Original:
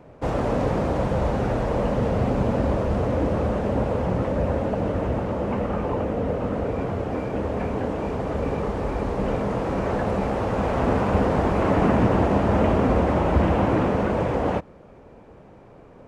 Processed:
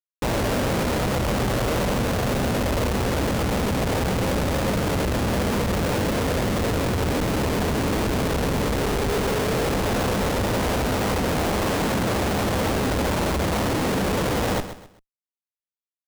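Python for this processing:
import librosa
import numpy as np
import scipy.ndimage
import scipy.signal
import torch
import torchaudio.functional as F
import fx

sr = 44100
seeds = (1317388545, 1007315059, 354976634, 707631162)

y = fx.peak_eq(x, sr, hz=420.0, db=9.0, octaves=0.32, at=(8.79, 9.75))
y = fx.schmitt(y, sr, flips_db=-30.0)
y = fx.echo_feedback(y, sr, ms=130, feedback_pct=32, wet_db=-11.5)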